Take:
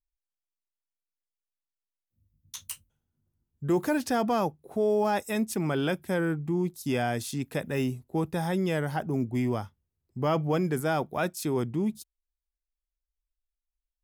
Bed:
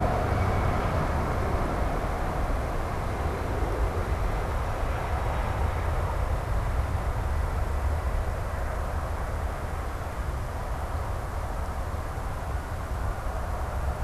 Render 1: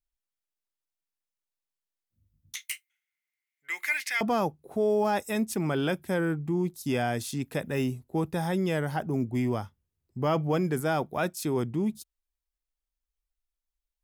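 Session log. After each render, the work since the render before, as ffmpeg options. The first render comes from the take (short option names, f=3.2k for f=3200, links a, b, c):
-filter_complex "[0:a]asettb=1/sr,asplit=3[a][b][c];[a]atrim=end=2.554[d];[b]atrim=start=2.55:end=4.21,asetpts=PTS-STARTPTS,afade=t=in:d=0.004:c=qsin,afade=t=out:st=1.656:d=0.004:c=qsin,highpass=f=2.1k:t=q:w=16[e];[c]atrim=start=4.206[f];[d][e]acrossfade=d=0.004:c1=hsin:c2=qsin[g];[g][f]acrossfade=d=0.004:c1=qsin:c2=hsin"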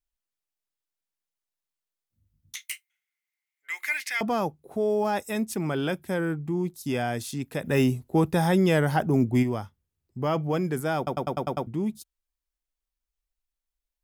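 -filter_complex "[0:a]asettb=1/sr,asplit=3[a][b][c];[a]atrim=end=2.634[d];[b]atrim=start=2.63:end=3.88,asetpts=PTS-STARTPTS,afade=t=in:d=0.004:c=qsin,afade=t=out:st=1.246:d=0.004:c=qsin,highpass=620[e];[c]atrim=start=3.876[f];[d][e]acrossfade=d=0.004:c1=hsin:c2=qsin[g];[g][f]acrossfade=d=0.004:c1=qsin:c2=hsin,asplit=3[h][i][j];[h]afade=t=out:st=7.64:d=0.02[k];[i]acontrast=69,afade=t=in:st=7.64:d=0.02,afade=t=out:st=9.42:d=0.02[l];[j]afade=t=in:st=9.42:d=0.02[m];[k][l][m]amix=inputs=3:normalize=0,asplit=8[n][o][p][q][r][s][t][u];[n]atrim=end=11.072[v];[o]atrim=start=10.968:end=11.072[w];[p]atrim=start=10.968:end=11.072[x];[q]atrim=start=10.968:end=11.072[y];[r]atrim=start=10.968:end=11.072[z];[s]atrim=start=10.968:end=11.072[aa];[t]atrim=start=10.968:end=11.072[ab];[u]atrim=start=11.668[ac];[v][w]acrossfade=d=0.004:c1=hsin:c2=hsin[ad];[ad][x]acrossfade=d=0.004:c1=hsin:c2=hsin[ae];[ae][y]acrossfade=d=0.004:c1=hsin:c2=hsin[af];[af][z]acrossfade=d=0.004:c1=hsin:c2=hsin[ag];[ag][aa]acrossfade=d=0.004:c1=hsin:c2=hsin[ah];[ah][ab]acrossfade=d=0.004:c1=hsin:c2=hsin[ai];[ai][ac]acrossfade=d=0.004:c1=hsin:c2=hsin"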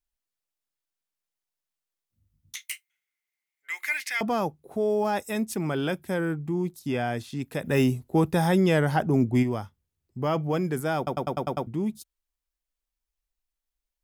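-filter_complex "[0:a]asettb=1/sr,asplit=3[a][b][c];[a]atrim=end=6.794[d];[b]atrim=start=6.79:end=7.39,asetpts=PTS-STARTPTS,afade=t=in:d=0.004:c=qsin,afade=t=out:st=0.596:d=0.004:c=qsin,acrossover=split=3900[e][f];[f]acompressor=threshold=-51dB:ratio=4:attack=1:release=60[g];[e][g]amix=inputs=2:normalize=0[h];[c]atrim=start=7.386[i];[d][h]acrossfade=d=0.004:c1=hsin:c2=qsin[j];[j][i]acrossfade=d=0.004:c1=qsin:c2=hsin,asettb=1/sr,asplit=3[k][l][m];[k]atrim=end=8.604[n];[l]atrim=start=8.6:end=9.51,asetpts=PTS-STARTPTS,afade=t=in:d=0.004:c=qsin,afade=t=out:st=0.906:d=0.004:c=qsin,highshelf=f=12k:g=-7.5[o];[m]atrim=start=9.506[p];[n][o]acrossfade=d=0.004:c1=hsin:c2=qsin[q];[q][p]acrossfade=d=0.004:c1=qsin:c2=hsin"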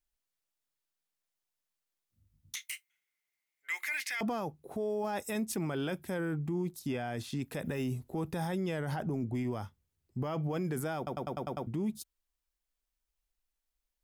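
-af "acompressor=threshold=-26dB:ratio=6,alimiter=level_in=2.5dB:limit=-24dB:level=0:latency=1:release=23,volume=-2.5dB"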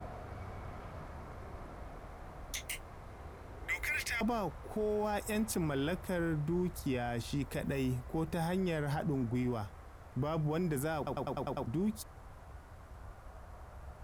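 -filter_complex "[1:a]volume=-20dB[a];[0:a][a]amix=inputs=2:normalize=0"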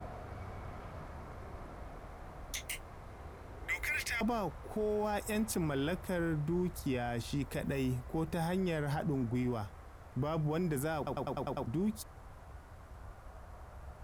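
-af anull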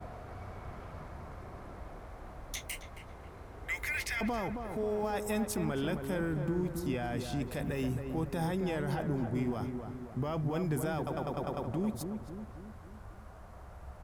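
-filter_complex "[0:a]asplit=2[a][b];[b]adelay=270,lowpass=f=1.5k:p=1,volume=-6dB,asplit=2[c][d];[d]adelay=270,lowpass=f=1.5k:p=1,volume=0.54,asplit=2[e][f];[f]adelay=270,lowpass=f=1.5k:p=1,volume=0.54,asplit=2[g][h];[h]adelay=270,lowpass=f=1.5k:p=1,volume=0.54,asplit=2[i][j];[j]adelay=270,lowpass=f=1.5k:p=1,volume=0.54,asplit=2[k][l];[l]adelay=270,lowpass=f=1.5k:p=1,volume=0.54,asplit=2[m][n];[n]adelay=270,lowpass=f=1.5k:p=1,volume=0.54[o];[a][c][e][g][i][k][m][o]amix=inputs=8:normalize=0"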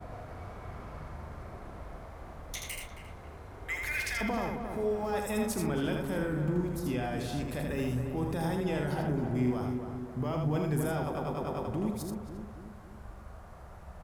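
-filter_complex "[0:a]asplit=2[a][b];[b]adelay=40,volume=-12dB[c];[a][c]amix=inputs=2:normalize=0,asplit=2[d][e];[e]aecho=0:1:80:0.631[f];[d][f]amix=inputs=2:normalize=0"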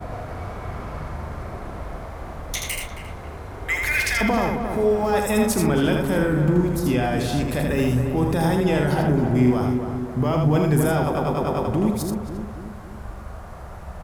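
-af "volume=11.5dB"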